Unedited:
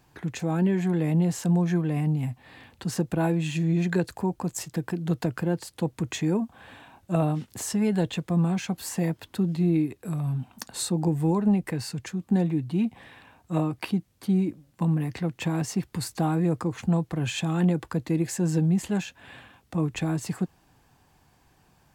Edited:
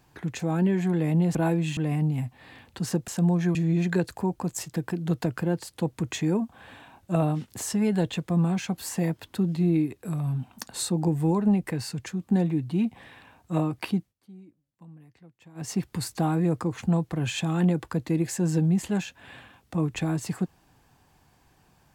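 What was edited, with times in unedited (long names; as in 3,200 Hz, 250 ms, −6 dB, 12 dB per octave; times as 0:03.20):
0:01.35–0:01.82: swap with 0:03.13–0:03.55
0:13.98–0:15.71: duck −24 dB, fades 0.16 s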